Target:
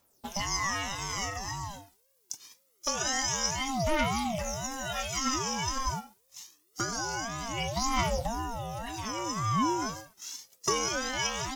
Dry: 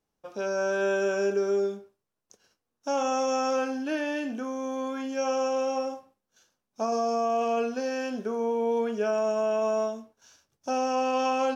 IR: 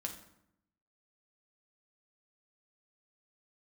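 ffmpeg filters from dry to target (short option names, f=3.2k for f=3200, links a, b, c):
-filter_complex "[0:a]acompressor=threshold=-33dB:ratio=6,asettb=1/sr,asplit=3[a][b][c];[a]atrim=end=9.814[d];[b]atrim=start=9.81:end=10.89,asetpts=PTS-STARTPTS,afade=t=in:d=0.004:c=qsin,afade=t=out:st=1.076:d=0.004:c=qsin,aeval=exprs='0.0944*(cos(1*acos(clip(val(0)/0.0944,-1,1)))-cos(1*PI/2))+0.00473*(cos(6*acos(clip(val(0)/0.0944,-1,1)))-cos(6*PI/2))':c=same[e];[c]atrim=start=10.886[f];[d][e]acrossfade=d=0.004:c1=hsin:c2=qsin[g];[g][f]acrossfade=d=0.004:c1=qsin:c2=hsin,crystalizer=i=7.5:c=0,aphaser=in_gain=1:out_gain=1:delay=1.9:decay=0.69:speed=0.25:type=triangular,aeval=exprs='val(0)*sin(2*PI*420*n/s+420*0.3/1.9*sin(2*PI*1.9*n/s))':c=same,volume=2dB"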